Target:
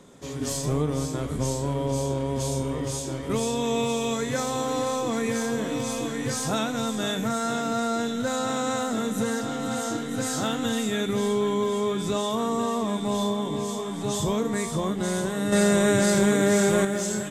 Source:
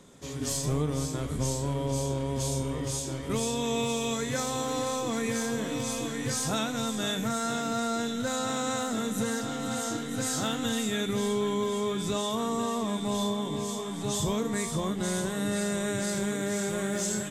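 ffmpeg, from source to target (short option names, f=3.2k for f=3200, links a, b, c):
-filter_complex "[0:a]equalizer=f=530:w=0.3:g=4.5,asettb=1/sr,asplit=3[a][b][c];[a]atrim=end=15.524[d];[b]atrim=start=15.52:end=16.85,asetpts=PTS-STARTPTS,afade=t=in:d=0.004:c=qsin,afade=t=out:st=1.326:d=0.004:c=qsin,acontrast=67[e];[c]atrim=start=16.846[f];[d][e]acrossfade=d=0.004:c1=hsin:c2=qsin[g];[g][f]acrossfade=d=0.004:c1=qsin:c2=hsin"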